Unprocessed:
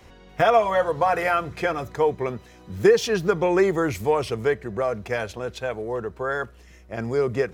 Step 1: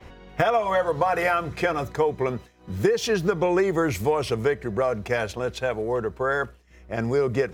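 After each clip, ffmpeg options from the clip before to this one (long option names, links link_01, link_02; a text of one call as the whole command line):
ffmpeg -i in.wav -filter_complex "[0:a]acrossover=split=3500[link_01][link_02];[link_01]acompressor=mode=upward:threshold=-33dB:ratio=2.5[link_03];[link_03][link_02]amix=inputs=2:normalize=0,agate=range=-33dB:threshold=-35dB:ratio=3:detection=peak,acompressor=threshold=-21dB:ratio=6,volume=3dB" out.wav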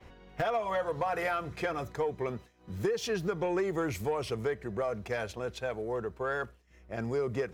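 ffmpeg -i in.wav -af "asoftclip=type=tanh:threshold=-12.5dB,volume=-8dB" out.wav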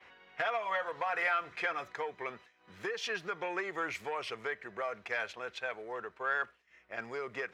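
ffmpeg -i in.wav -af "bandpass=frequency=2000:width_type=q:width=1.1:csg=0,volume=5dB" out.wav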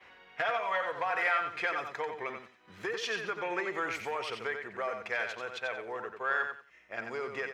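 ffmpeg -i in.wav -af "aecho=1:1:90|180|270:0.473|0.104|0.0229,volume=1.5dB" out.wav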